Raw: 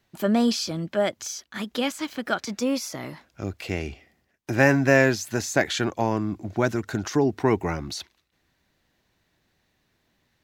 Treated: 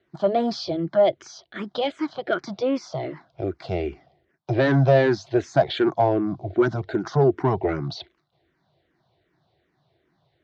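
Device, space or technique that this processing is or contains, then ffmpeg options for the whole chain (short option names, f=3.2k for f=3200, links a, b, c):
barber-pole phaser into a guitar amplifier: -filter_complex "[0:a]asplit=2[a][b];[b]afreqshift=-2.6[c];[a][c]amix=inputs=2:normalize=1,asoftclip=type=tanh:threshold=-18.5dB,highpass=78,equalizer=f=140:t=q:w=4:g=9,equalizer=f=230:t=q:w=4:g=-7,equalizer=f=360:t=q:w=4:g=8,equalizer=f=680:t=q:w=4:g=9,equalizer=f=1.8k:t=q:w=4:g=-4,equalizer=f=2.6k:t=q:w=4:g=-8,lowpass=f=4.1k:w=0.5412,lowpass=f=4.1k:w=1.3066,volume=4dB"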